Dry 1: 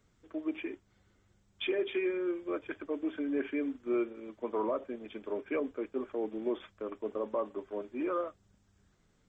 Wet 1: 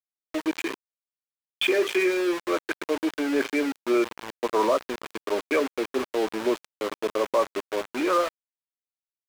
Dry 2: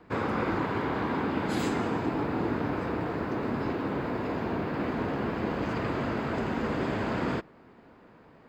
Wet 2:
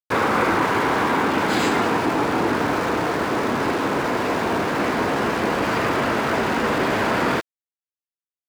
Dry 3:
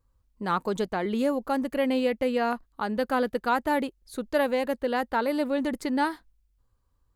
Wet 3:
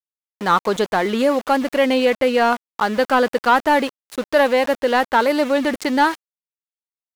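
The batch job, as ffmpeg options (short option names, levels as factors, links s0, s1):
-filter_complex "[0:a]acontrast=35,aeval=exprs='val(0)*gte(abs(val(0)),0.0211)':c=same,asplit=2[s0][s1];[s1]highpass=f=720:p=1,volume=3.55,asoftclip=type=tanh:threshold=0.501[s2];[s0][s2]amix=inputs=2:normalize=0,lowpass=f=5300:p=1,volume=0.501,volume=1.26"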